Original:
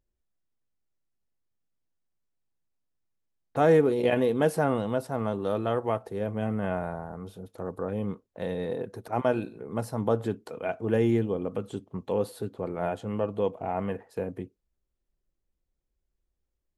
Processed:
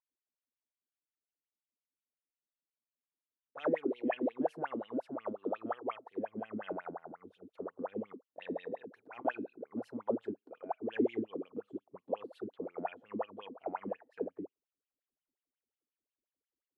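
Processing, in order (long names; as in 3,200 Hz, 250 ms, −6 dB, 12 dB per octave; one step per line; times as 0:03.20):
in parallel at +1 dB: speech leveller within 4 dB 2 s
on the sum: LFO wah 5.6 Hz 240–3,100 Hz, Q 12
level −2.5 dB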